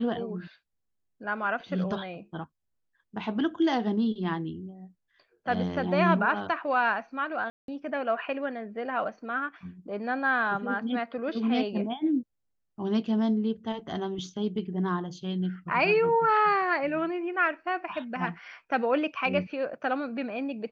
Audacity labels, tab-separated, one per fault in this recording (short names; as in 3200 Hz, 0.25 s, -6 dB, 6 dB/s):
7.500000	7.680000	gap 0.182 s